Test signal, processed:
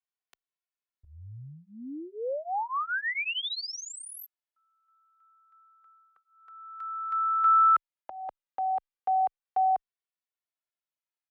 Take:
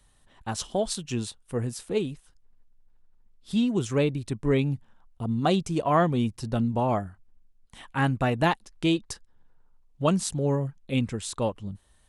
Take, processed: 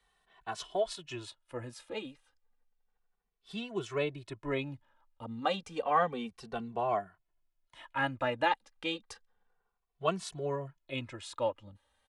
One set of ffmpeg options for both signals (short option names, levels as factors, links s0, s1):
-filter_complex "[0:a]acrossover=split=420 4200:gain=0.178 1 0.224[s0][s1][s2];[s0][s1][s2]amix=inputs=3:normalize=0,asplit=2[s3][s4];[s4]adelay=2.2,afreqshift=-0.31[s5];[s3][s5]amix=inputs=2:normalize=1"